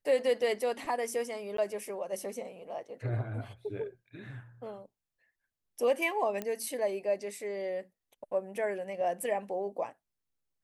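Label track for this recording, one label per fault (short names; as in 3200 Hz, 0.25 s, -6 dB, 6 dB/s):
1.570000	1.580000	gap
6.420000	6.420000	pop -21 dBFS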